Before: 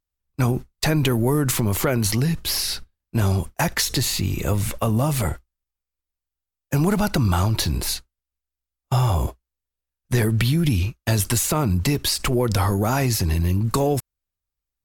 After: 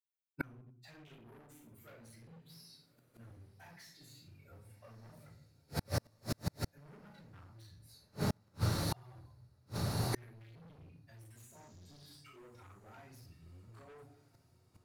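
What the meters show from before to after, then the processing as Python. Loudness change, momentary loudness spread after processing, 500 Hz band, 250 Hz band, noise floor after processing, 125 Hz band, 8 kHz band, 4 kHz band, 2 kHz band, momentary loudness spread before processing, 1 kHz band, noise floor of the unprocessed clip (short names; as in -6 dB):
-17.5 dB, 21 LU, -22.5 dB, -22.5 dB, -71 dBFS, -21.5 dB, -25.5 dB, -22.0 dB, -21.0 dB, 5 LU, -21.5 dB, under -85 dBFS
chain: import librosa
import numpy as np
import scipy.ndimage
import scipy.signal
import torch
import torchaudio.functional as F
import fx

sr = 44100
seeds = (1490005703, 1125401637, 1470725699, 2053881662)

p1 = fx.bin_expand(x, sr, power=2.0)
p2 = fx.room_shoebox(p1, sr, seeds[0], volume_m3=86.0, walls='mixed', distance_m=4.4)
p3 = fx.spec_repair(p2, sr, seeds[1], start_s=11.55, length_s=0.53, low_hz=1200.0, high_hz=7200.0, source='both')
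p4 = scipy.signal.sosfilt(scipy.signal.butter(4, 96.0, 'highpass', fs=sr, output='sos'), p3)
p5 = np.clip(p4, -10.0 ** (-10.5 / 20.0), 10.0 ** (-10.5 / 20.0))
p6 = fx.rider(p5, sr, range_db=4, speed_s=0.5)
p7 = p6 + fx.echo_diffused(p6, sr, ms=1237, feedback_pct=68, wet_db=-15, dry=0)
p8 = fx.dynamic_eq(p7, sr, hz=1900.0, q=0.84, threshold_db=-34.0, ratio=4.0, max_db=4)
p9 = fx.hum_notches(p8, sr, base_hz=50, count=9)
p10 = fx.gate_flip(p9, sr, shuts_db=-18.0, range_db=-39)
y = F.gain(torch.from_numpy(p10), -3.5).numpy()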